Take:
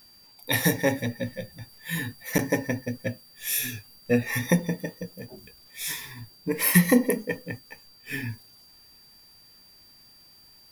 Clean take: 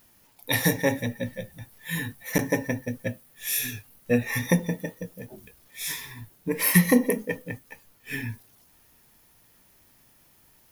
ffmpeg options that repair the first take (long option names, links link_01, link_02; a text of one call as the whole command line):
ffmpeg -i in.wav -af "adeclick=threshold=4,bandreject=frequency=4700:width=30" out.wav